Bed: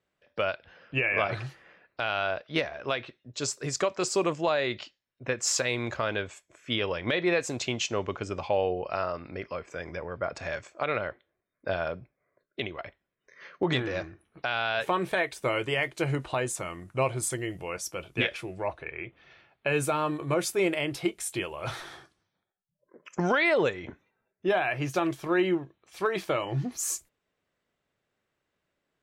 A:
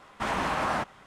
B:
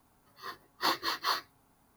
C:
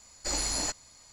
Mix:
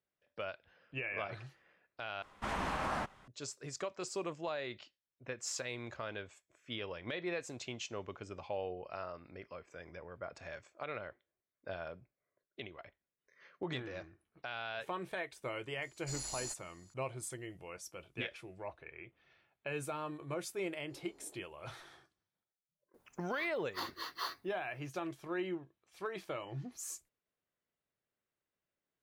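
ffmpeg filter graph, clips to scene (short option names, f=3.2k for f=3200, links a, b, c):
-filter_complex "[3:a]asplit=2[a][b];[0:a]volume=-13dB[c];[1:a]lowshelf=f=77:g=9.5[d];[a]equalizer=f=11k:w=0.39:g=8.5[e];[b]bandpass=f=390:t=q:w=4.5:csg=0[f];[2:a]alimiter=limit=-18.5dB:level=0:latency=1:release=386[g];[c]asplit=2[h][i];[h]atrim=end=2.224[j];[d]atrim=end=1.06,asetpts=PTS-STARTPTS,volume=-8.5dB[k];[i]atrim=start=3.276[l];[e]atrim=end=1.12,asetpts=PTS-STARTPTS,volume=-17.5dB,afade=t=in:d=0.004:c=hsin,afade=t=out:st=1.116:d=0.004:c=hsin,adelay=15820[m];[f]atrim=end=1.12,asetpts=PTS-STARTPTS,volume=-11dB,afade=t=in:d=0.004:c=hsin,afade=t=out:st=1.116:d=0.004:c=hsin,adelay=20640[n];[g]atrim=end=1.96,asetpts=PTS-STARTPTS,volume=-8.5dB,afade=t=in:d=0.004:c=hsin,afade=t=out:st=1.956:d=0.004:c=hsin,adelay=22940[o];[j][k]acrossfade=d=0.004:c1=hsin:c2=hsin[p];[p][l]acrossfade=d=0.004:c1=hsin:c2=hsin[q];[q][m][n][o]amix=inputs=4:normalize=0"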